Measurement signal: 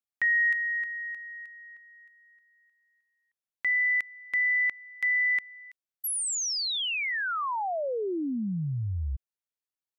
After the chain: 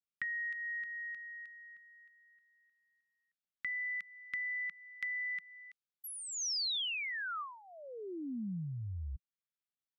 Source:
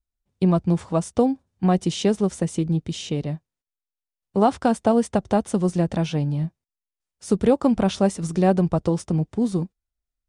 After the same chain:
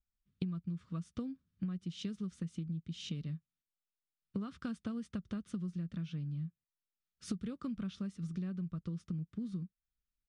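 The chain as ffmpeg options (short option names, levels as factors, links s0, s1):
-af "firequalizer=gain_entry='entry(110,0);entry(170,8);entry(290,-3);entry(830,-23);entry(1200,2);entry(1900,-1);entry(3300,1);entry(7900,-11)':delay=0.05:min_phase=1,acompressor=threshold=0.0251:ratio=8:attack=19:release=469:knee=6:detection=peak,adynamicequalizer=threshold=0.00355:dfrequency=3200:dqfactor=0.7:tfrequency=3200:tqfactor=0.7:attack=5:release=100:ratio=0.375:range=3.5:mode=boostabove:tftype=highshelf,volume=0.531"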